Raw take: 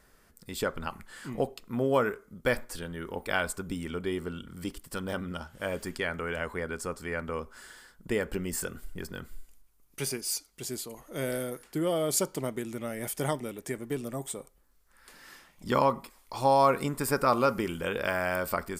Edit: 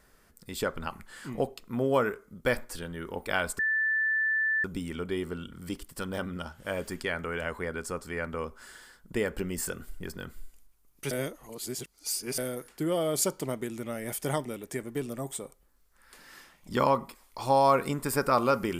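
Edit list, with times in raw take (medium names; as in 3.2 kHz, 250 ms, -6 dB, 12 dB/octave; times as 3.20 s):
3.59 s: add tone 1.76 kHz -24 dBFS 1.05 s
10.06–11.33 s: reverse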